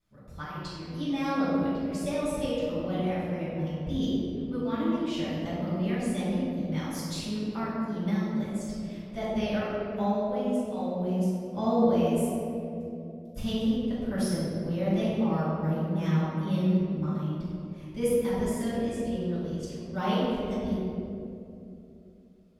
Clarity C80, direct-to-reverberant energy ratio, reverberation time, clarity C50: -1.0 dB, -14.0 dB, 2.8 s, -3.0 dB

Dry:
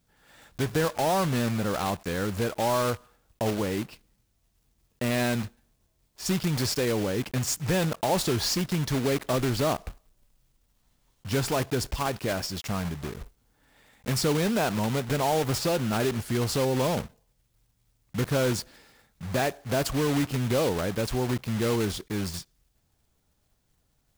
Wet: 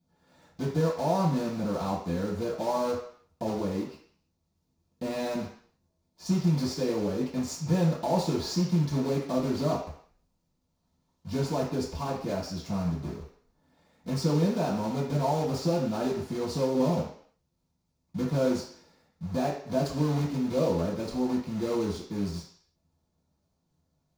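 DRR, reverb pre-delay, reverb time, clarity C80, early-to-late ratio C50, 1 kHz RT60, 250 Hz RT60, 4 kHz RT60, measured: -11.5 dB, 3 ms, 0.55 s, 9.0 dB, 5.5 dB, 0.55 s, 0.50 s, 0.60 s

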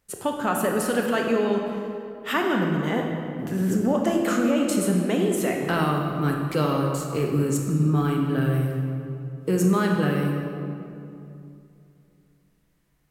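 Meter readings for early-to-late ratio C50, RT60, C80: 2.5 dB, 2.7 s, 4.0 dB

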